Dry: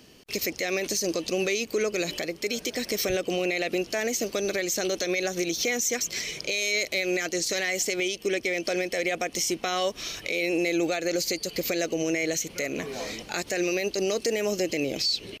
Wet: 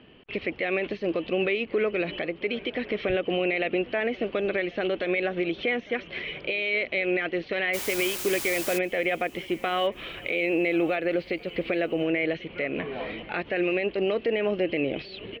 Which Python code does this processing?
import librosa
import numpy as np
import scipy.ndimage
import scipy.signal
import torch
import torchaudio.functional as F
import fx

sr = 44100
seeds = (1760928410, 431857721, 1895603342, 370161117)

y = scipy.signal.sosfilt(scipy.signal.ellip(4, 1.0, 60, 3100.0, 'lowpass', fs=sr, output='sos'), x)
y = fx.quant_dither(y, sr, seeds[0], bits=6, dither='triangular', at=(7.73, 8.77), fade=0.02)
y = fx.echo_feedback(y, sr, ms=1090, feedback_pct=40, wet_db=-22.0)
y = y * librosa.db_to_amplitude(2.0)